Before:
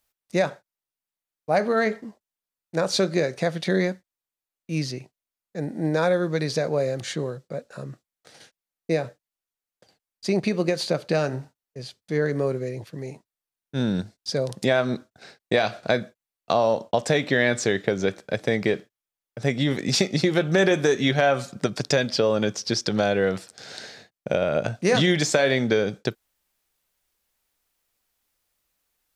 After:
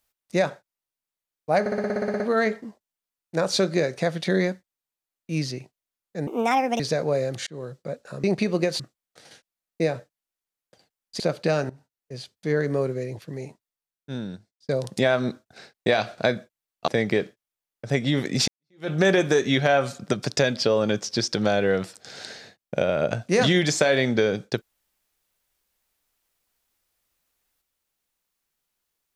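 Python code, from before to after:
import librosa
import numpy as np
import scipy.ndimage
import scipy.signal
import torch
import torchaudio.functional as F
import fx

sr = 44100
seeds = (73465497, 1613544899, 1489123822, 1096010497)

y = fx.edit(x, sr, fx.stutter(start_s=1.6, slice_s=0.06, count=11),
    fx.speed_span(start_s=5.67, length_s=0.78, speed=1.48),
    fx.fade_in_span(start_s=7.12, length_s=0.27),
    fx.move(start_s=10.29, length_s=0.56, to_s=7.89),
    fx.fade_in_from(start_s=11.35, length_s=0.44, floor_db=-18.5),
    fx.fade_out_span(start_s=13.1, length_s=1.24),
    fx.cut(start_s=16.53, length_s=1.88),
    fx.fade_in_span(start_s=20.01, length_s=0.42, curve='exp'), tone=tone)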